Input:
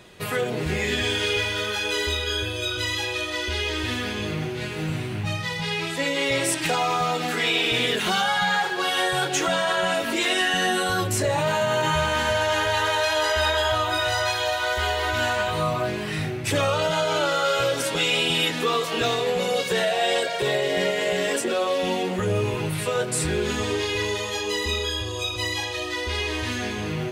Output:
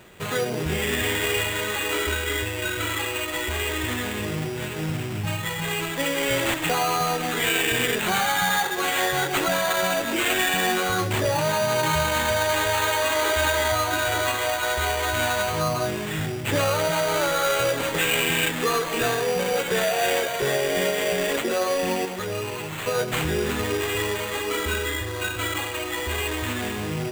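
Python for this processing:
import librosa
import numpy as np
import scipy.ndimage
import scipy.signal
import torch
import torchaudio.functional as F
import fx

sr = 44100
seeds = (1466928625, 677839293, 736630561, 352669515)

y = fx.low_shelf(x, sr, hz=430.0, db=-10.5, at=(22.05, 22.86))
y = fx.sample_hold(y, sr, seeds[0], rate_hz=5300.0, jitter_pct=0)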